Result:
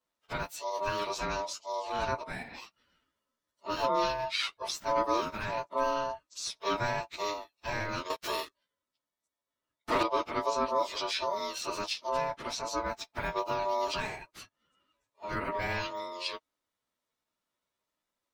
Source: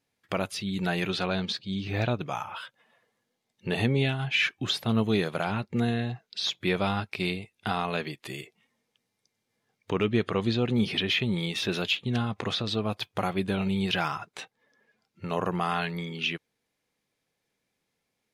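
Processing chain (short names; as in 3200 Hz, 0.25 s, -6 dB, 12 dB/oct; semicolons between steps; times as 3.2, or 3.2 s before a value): inharmonic rescaling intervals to 111%; ring modulator 780 Hz; 8.1–10.03 sample leveller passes 3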